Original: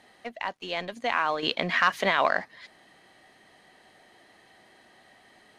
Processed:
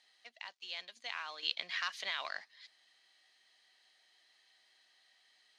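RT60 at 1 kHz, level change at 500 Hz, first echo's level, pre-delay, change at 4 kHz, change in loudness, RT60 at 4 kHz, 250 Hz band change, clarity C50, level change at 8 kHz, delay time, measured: none, -24.5 dB, none, none, -6.5 dB, -13.0 dB, none, -32.0 dB, none, -7.0 dB, none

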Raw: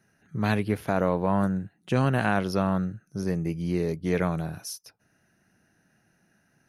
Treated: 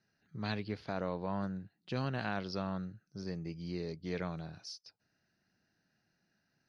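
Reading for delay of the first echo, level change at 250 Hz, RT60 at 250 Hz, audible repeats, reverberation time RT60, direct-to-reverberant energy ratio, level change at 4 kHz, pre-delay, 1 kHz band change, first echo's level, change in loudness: none, -12.5 dB, none, none, none, none, -5.0 dB, none, -12.5 dB, none, -12.5 dB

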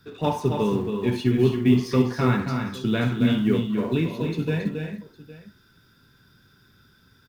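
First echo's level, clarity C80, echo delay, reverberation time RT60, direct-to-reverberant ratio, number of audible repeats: -13.5 dB, none, 65 ms, none, none, 4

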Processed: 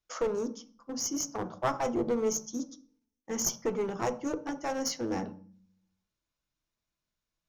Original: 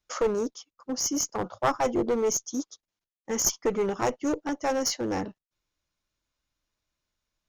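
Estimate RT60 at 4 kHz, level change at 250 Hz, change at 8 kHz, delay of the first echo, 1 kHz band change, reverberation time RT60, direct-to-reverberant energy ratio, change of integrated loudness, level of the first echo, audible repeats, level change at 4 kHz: 0.40 s, -3.5 dB, -5.5 dB, none, -5.0 dB, 0.45 s, 9.5 dB, -5.0 dB, none, none, -5.5 dB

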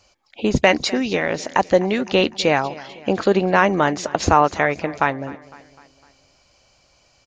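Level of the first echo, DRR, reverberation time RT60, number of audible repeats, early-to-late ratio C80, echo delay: -19.5 dB, none, none, 3, none, 0.253 s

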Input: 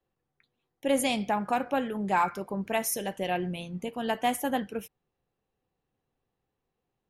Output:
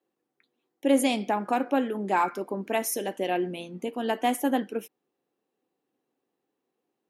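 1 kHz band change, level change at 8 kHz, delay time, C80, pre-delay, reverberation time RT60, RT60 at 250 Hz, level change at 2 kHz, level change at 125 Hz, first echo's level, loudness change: +1.0 dB, 0.0 dB, none, none, none, none, none, 0.0 dB, -3.5 dB, none, +2.0 dB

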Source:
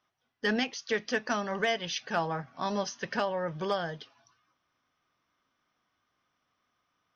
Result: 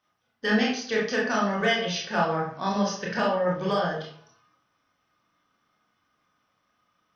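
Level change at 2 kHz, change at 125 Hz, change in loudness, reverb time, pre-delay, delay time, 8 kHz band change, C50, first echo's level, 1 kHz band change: +5.0 dB, +7.5 dB, +6.0 dB, 0.55 s, 22 ms, none, n/a, 3.5 dB, none, +5.5 dB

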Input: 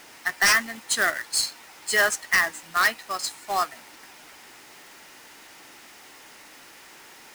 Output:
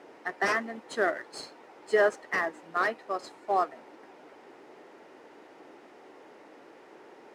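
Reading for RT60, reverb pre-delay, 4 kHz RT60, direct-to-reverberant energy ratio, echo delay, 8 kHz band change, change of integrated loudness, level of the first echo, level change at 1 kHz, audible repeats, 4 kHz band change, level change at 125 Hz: none, none, none, none, none, -22.5 dB, -6.5 dB, none, -3.0 dB, none, -17.0 dB, n/a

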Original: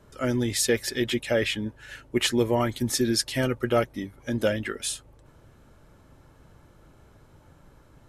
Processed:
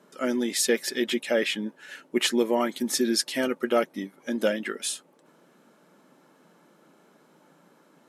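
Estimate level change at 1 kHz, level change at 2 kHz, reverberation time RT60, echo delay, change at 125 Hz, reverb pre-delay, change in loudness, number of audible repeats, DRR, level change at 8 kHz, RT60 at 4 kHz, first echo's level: 0.0 dB, 0.0 dB, none, none, -16.5 dB, none, -0.5 dB, none, none, 0.0 dB, none, none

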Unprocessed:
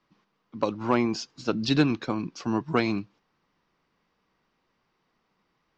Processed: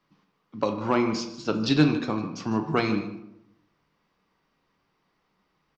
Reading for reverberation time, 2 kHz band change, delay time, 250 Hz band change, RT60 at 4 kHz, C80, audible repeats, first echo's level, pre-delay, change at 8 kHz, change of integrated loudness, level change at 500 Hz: 0.80 s, +1.0 dB, 0.152 s, +1.5 dB, 0.45 s, 10.5 dB, 1, -15.0 dB, 7 ms, n/a, +1.5 dB, +1.0 dB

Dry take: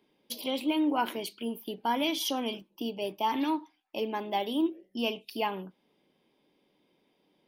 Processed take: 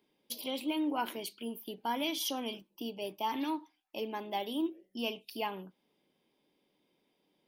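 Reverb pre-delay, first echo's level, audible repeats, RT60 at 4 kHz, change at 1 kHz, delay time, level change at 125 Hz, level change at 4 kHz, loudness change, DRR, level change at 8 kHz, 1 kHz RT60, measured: none, none, none, none, -5.5 dB, none, n/a, -4.0 dB, -5.0 dB, none, -1.5 dB, none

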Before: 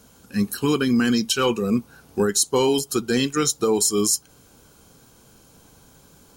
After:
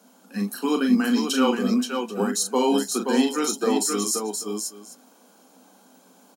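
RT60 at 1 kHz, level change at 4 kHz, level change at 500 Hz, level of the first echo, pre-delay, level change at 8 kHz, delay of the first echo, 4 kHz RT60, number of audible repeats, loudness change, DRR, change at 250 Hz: none, -3.5 dB, -2.5 dB, -6.0 dB, none, -4.0 dB, 40 ms, none, 3, -2.0 dB, none, +0.5 dB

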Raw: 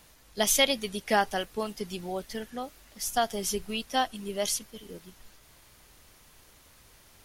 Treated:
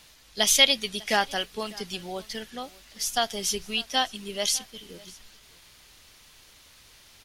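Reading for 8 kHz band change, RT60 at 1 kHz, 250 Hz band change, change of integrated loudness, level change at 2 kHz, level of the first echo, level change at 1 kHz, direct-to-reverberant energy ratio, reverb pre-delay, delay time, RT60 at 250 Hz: +4.0 dB, none, -2.0 dB, +4.0 dB, +4.0 dB, -22.5 dB, -0.5 dB, none, none, 0.599 s, none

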